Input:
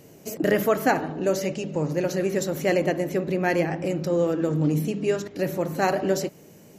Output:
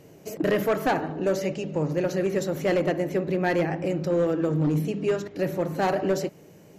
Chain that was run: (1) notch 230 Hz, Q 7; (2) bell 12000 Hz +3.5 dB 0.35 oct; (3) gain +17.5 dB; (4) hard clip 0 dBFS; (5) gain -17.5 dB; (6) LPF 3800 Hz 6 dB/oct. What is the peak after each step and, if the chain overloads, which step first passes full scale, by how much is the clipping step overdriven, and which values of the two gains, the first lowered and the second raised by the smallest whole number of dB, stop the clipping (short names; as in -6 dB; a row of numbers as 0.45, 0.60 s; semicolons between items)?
-8.5, -8.5, +9.0, 0.0, -17.5, -17.5 dBFS; step 3, 9.0 dB; step 3 +8.5 dB, step 5 -8.5 dB